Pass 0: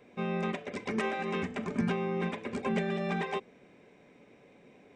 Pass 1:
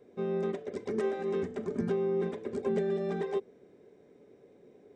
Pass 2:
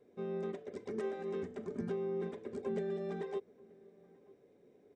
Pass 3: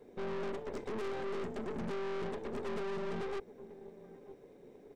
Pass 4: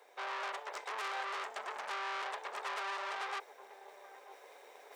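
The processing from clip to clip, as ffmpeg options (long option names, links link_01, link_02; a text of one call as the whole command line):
ffmpeg -i in.wav -af "equalizer=frequency=100:width_type=o:width=0.67:gain=4,equalizer=frequency=400:width_type=o:width=0.67:gain=11,equalizer=frequency=1000:width_type=o:width=0.67:gain=-4,equalizer=frequency=2500:width_type=o:width=0.67:gain=-11,volume=-5dB" out.wav
ffmpeg -i in.wav -filter_complex "[0:a]asplit=2[link_01][link_02];[link_02]adelay=932.9,volume=-24dB,highshelf=frequency=4000:gain=-21[link_03];[link_01][link_03]amix=inputs=2:normalize=0,volume=-7dB" out.wav
ffmpeg -i in.wav -af "aeval=exprs='(tanh(282*val(0)+0.7)-tanh(0.7))/282':channel_layout=same,volume=12dB" out.wav
ffmpeg -i in.wav -af "highpass=frequency=760:width=0.5412,highpass=frequency=760:width=1.3066,areverse,acompressor=mode=upward:threshold=-55dB:ratio=2.5,areverse,volume=8dB" out.wav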